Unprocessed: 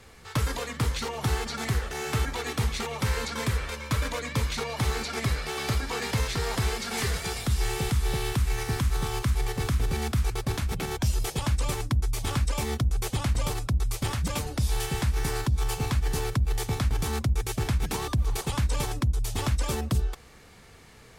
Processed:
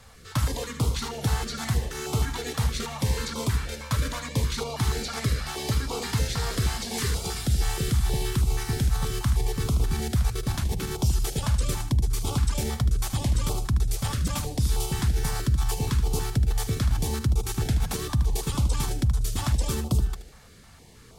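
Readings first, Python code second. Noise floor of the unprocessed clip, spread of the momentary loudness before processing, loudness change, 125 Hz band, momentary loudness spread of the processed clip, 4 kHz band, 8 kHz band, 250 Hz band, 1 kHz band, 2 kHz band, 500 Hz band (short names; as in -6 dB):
-51 dBFS, 2 LU, +1.5 dB, +2.0 dB, 3 LU, +0.5 dB, +2.0 dB, +1.5 dB, -1.5 dB, -3.0 dB, -1.0 dB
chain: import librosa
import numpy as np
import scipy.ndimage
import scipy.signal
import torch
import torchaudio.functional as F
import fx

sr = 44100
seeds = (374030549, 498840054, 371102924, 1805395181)

y = fx.peak_eq(x, sr, hz=2300.0, db=-5.5, octaves=0.8)
y = fx.echo_feedback(y, sr, ms=76, feedback_pct=31, wet_db=-10.5)
y = fx.filter_held_notch(y, sr, hz=6.3, low_hz=340.0, high_hz=1700.0)
y = y * 10.0 ** (2.0 / 20.0)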